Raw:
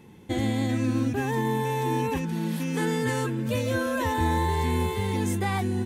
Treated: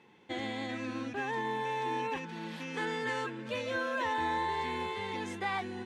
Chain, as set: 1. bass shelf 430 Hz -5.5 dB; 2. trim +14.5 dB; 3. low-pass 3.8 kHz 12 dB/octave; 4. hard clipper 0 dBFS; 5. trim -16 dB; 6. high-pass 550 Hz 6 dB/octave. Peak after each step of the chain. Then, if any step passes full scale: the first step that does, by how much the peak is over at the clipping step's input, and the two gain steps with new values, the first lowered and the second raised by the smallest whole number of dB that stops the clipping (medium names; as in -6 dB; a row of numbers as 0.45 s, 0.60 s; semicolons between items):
-16.5 dBFS, -2.0 dBFS, -2.5 dBFS, -2.5 dBFS, -18.5 dBFS, -21.5 dBFS; nothing clips